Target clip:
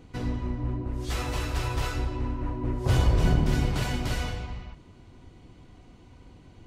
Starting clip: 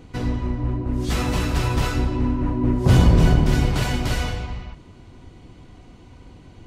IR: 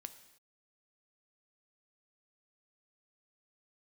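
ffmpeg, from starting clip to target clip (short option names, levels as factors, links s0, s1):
-filter_complex "[0:a]asettb=1/sr,asplit=3[s0][s1][s2];[s0]atrim=end=0.884[s3];[s1]atrim=start=0.88:end=3.25,asetpts=PTS-STARTPTS,afade=t=in:d=0.004:c=qsin,afade=t=out:st=2.366:d=0.004:c=qsin,equalizer=f=200:t=o:w=0.71:g=-13.5[s4];[s2]atrim=start=3.246[s5];[s3][s4]acrossfade=d=0.004:c1=hsin:c2=qsin[s6];[s6][s5]acrossfade=d=0.004:c1=qsin:c2=hsin,volume=0.501"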